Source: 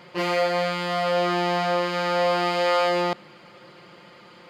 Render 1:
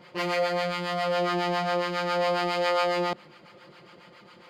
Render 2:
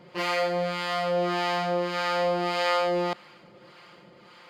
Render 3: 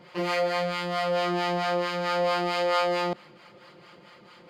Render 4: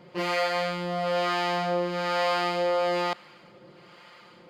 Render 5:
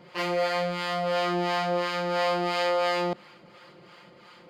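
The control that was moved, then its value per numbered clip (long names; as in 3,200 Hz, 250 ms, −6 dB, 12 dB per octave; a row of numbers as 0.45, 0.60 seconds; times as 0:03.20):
two-band tremolo in antiphase, speed: 7.3, 1.7, 4.5, 1.1, 2.9 Hertz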